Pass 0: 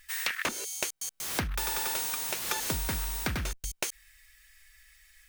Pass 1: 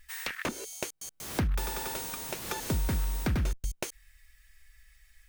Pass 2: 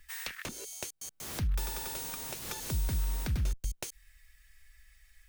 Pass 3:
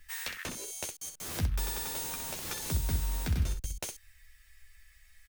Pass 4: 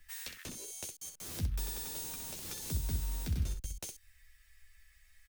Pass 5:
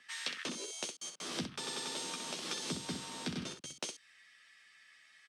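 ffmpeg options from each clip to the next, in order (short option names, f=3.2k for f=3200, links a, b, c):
-af "tiltshelf=f=670:g=6"
-filter_complex "[0:a]acrossover=split=150|3000[a][b][c];[b]acompressor=threshold=-42dB:ratio=4[d];[a][d][c]amix=inputs=3:normalize=0,volume=-1dB"
-af "aecho=1:1:12|63:0.596|0.447"
-filter_complex "[0:a]acrossover=split=460|3000[a][b][c];[b]acompressor=threshold=-56dB:ratio=2[d];[a][d][c]amix=inputs=3:normalize=0,volume=-4dB"
-af "highpass=f=200:w=0.5412,highpass=f=200:w=1.3066,equalizer=f=1.2k:t=q:w=4:g=5,equalizer=f=3.2k:t=q:w=4:g=4,equalizer=f=6.9k:t=q:w=4:g=-7,lowpass=f=7.5k:w=0.5412,lowpass=f=7.5k:w=1.3066,volume=7dB"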